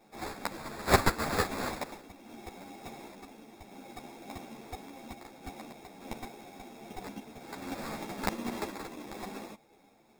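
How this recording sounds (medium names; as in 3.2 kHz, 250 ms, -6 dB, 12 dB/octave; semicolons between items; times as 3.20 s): aliases and images of a low sample rate 3 kHz, jitter 0%; random-step tremolo; a shimmering, thickened sound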